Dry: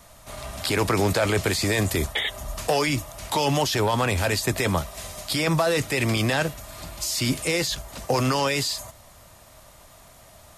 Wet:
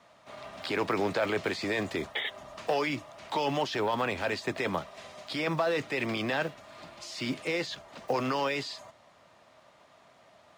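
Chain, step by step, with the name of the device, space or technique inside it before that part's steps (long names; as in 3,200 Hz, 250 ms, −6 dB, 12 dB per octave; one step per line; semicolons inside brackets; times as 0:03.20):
early digital voice recorder (band-pass filter 210–3,500 Hz; one scale factor per block 7 bits)
level −5.5 dB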